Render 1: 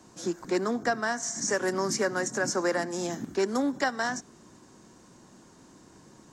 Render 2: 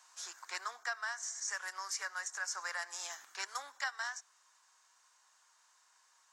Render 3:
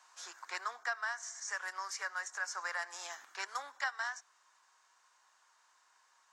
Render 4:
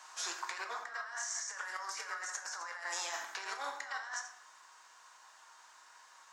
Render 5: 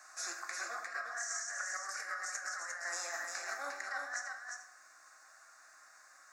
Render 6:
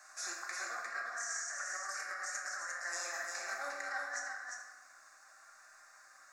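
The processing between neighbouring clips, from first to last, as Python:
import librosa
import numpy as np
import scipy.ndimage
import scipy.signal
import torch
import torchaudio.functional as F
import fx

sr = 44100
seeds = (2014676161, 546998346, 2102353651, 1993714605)

y1 = scipy.signal.sosfilt(scipy.signal.butter(4, 1000.0, 'highpass', fs=sr, output='sos'), x)
y1 = fx.rider(y1, sr, range_db=3, speed_s=0.5)
y1 = y1 * librosa.db_to_amplitude(-5.5)
y2 = fx.high_shelf(y1, sr, hz=4200.0, db=-10.0)
y2 = y2 * librosa.db_to_amplitude(3.0)
y3 = y2 + 10.0 ** (-13.5 / 20.0) * np.pad(y2, (int(86 * sr / 1000.0), 0))[:len(y2)]
y3 = fx.over_compress(y3, sr, threshold_db=-47.0, ratio=-1.0)
y3 = fx.room_shoebox(y3, sr, seeds[0], volume_m3=210.0, walls='mixed', distance_m=0.6)
y3 = y3 * librosa.db_to_amplitude(3.5)
y4 = fx.fixed_phaser(y3, sr, hz=630.0, stages=8)
y4 = y4 + 10.0 ** (-4.5 / 20.0) * np.pad(y4, (int(352 * sr / 1000.0), 0))[:len(y4)]
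y4 = y4 * librosa.db_to_amplitude(1.5)
y5 = fx.room_shoebox(y4, sr, seeds[1], volume_m3=1200.0, walls='mixed', distance_m=1.2)
y5 = y5 * librosa.db_to_amplitude(-1.5)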